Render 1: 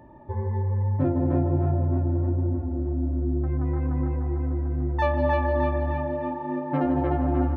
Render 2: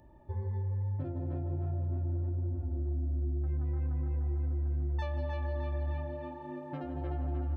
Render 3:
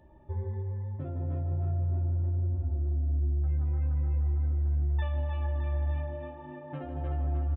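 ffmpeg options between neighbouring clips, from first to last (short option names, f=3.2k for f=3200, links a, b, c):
-af "acompressor=threshold=-24dB:ratio=6,equalizer=f=125:t=o:w=1:g=-7,equalizer=f=250:t=o:w=1:g=-10,equalizer=f=500:t=o:w=1:g=-7,equalizer=f=1k:t=o:w=1:g=-11,equalizer=f=2k:t=o:w=1:g=-8"
-af "aecho=1:1:13|57:0.531|0.299,aresample=8000,aresample=44100"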